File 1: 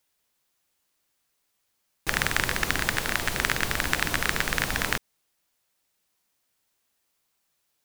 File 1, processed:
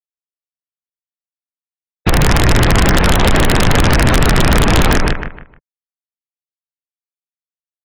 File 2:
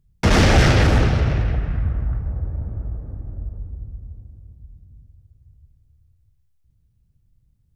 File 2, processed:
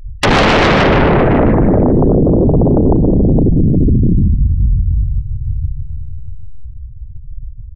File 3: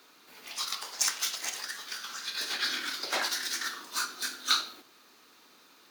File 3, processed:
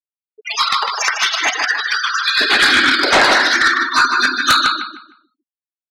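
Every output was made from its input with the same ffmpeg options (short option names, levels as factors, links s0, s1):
-filter_complex "[0:a]equalizer=f=150:t=o:w=0.39:g=3,acompressor=threshold=0.0562:ratio=8,lowshelf=f=110:g=10,acrossover=split=3100[s0][s1];[s1]acompressor=threshold=0.00708:ratio=4:attack=1:release=60[s2];[s0][s2]amix=inputs=2:normalize=0,afftfilt=real='re*gte(hypot(re,im),0.0141)':imag='im*gte(hypot(re,im),0.0141)':win_size=1024:overlap=0.75,asplit=2[s3][s4];[s4]adelay=153,lowpass=f=3900:p=1,volume=0.562,asplit=2[s5][s6];[s6]adelay=153,lowpass=f=3900:p=1,volume=0.27,asplit=2[s7][s8];[s8]adelay=153,lowpass=f=3900:p=1,volume=0.27,asplit=2[s9][s10];[s10]adelay=153,lowpass=f=3900:p=1,volume=0.27[s11];[s5][s7][s9][s11]amix=inputs=4:normalize=0[s12];[s3][s12]amix=inputs=2:normalize=0,aeval=exprs='0.316*sin(PI/2*7.94*val(0)/0.316)':c=same,volume=1.5"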